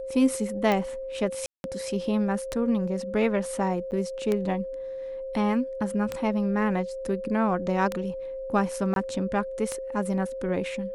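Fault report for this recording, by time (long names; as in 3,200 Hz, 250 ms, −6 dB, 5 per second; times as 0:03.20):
scratch tick 33 1/3 rpm −13 dBFS
whistle 530 Hz −32 dBFS
0:01.46–0:01.64: drop-out 181 ms
0:03.91–0:03.92: drop-out 9.4 ms
0:08.94–0:08.96: drop-out 22 ms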